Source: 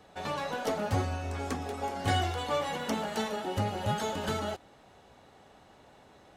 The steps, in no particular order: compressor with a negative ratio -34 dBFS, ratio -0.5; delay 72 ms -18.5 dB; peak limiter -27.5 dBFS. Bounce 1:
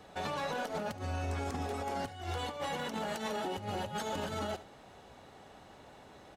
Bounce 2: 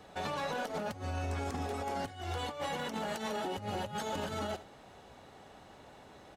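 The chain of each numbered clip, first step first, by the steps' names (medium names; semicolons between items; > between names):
compressor with a negative ratio > delay > peak limiter; delay > compressor with a negative ratio > peak limiter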